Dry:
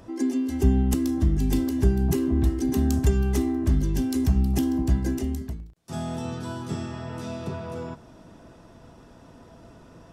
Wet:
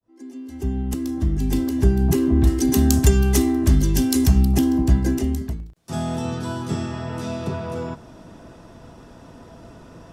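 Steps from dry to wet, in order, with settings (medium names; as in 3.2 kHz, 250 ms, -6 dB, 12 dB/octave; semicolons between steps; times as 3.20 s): fade-in on the opening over 2.32 s; 2.47–4.45 s: treble shelf 2.7 kHz +8.5 dB; trim +5.5 dB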